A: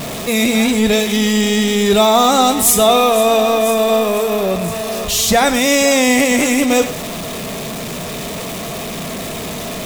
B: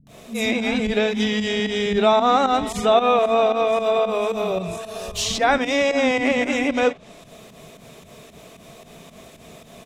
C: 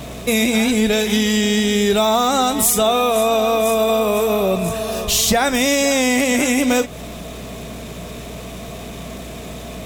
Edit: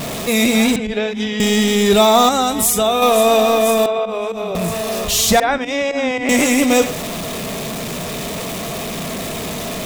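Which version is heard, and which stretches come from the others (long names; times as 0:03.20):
A
0:00.76–0:01.40: punch in from B
0:02.29–0:03.02: punch in from C
0:03.86–0:04.55: punch in from B
0:05.40–0:06.29: punch in from B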